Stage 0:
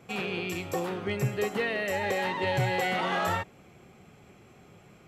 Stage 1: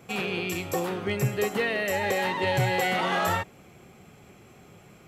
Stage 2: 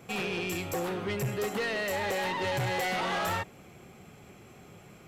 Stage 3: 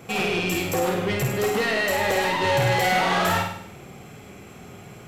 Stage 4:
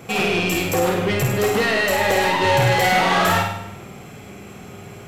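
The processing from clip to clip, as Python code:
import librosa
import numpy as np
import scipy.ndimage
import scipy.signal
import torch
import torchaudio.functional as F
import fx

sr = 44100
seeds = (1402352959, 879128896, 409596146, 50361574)

y1 = fx.high_shelf(x, sr, hz=8400.0, db=7.5)
y1 = y1 * 10.0 ** (2.5 / 20.0)
y2 = 10.0 ** (-27.0 / 20.0) * np.tanh(y1 / 10.0 ** (-27.0 / 20.0))
y3 = fx.room_flutter(y2, sr, wall_m=8.6, rt60_s=0.66)
y3 = y3 * 10.0 ** (7.0 / 20.0)
y4 = fx.rev_spring(y3, sr, rt60_s=1.1, pass_ms=(40,), chirp_ms=60, drr_db=12.0)
y4 = y4 * 10.0 ** (4.0 / 20.0)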